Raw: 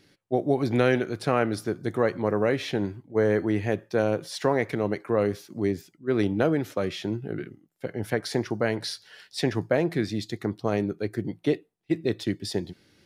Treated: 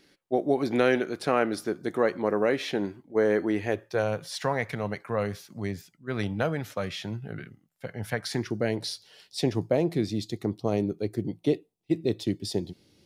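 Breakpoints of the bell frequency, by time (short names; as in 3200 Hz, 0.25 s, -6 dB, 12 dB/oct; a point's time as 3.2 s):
bell -12.5 dB 0.87 oct
3.51 s 110 Hz
4.15 s 340 Hz
8.19 s 340 Hz
8.79 s 1600 Hz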